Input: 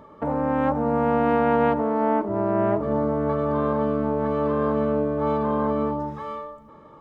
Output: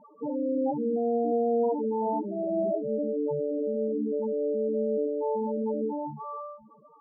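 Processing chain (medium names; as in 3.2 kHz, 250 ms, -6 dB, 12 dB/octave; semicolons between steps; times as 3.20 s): median filter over 9 samples; loudest bins only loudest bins 4; trim -1.5 dB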